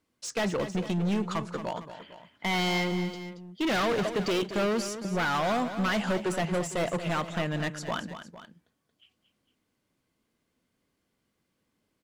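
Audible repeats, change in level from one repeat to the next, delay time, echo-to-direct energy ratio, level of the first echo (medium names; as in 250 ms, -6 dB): 2, -5.0 dB, 228 ms, -10.0 dB, -11.0 dB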